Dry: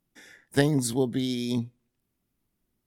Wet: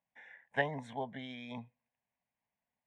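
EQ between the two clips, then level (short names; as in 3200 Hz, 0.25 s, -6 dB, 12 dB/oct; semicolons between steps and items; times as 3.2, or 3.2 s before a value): band-pass 1200 Hz, Q 0.96; air absorption 140 m; fixed phaser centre 1300 Hz, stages 6; +3.0 dB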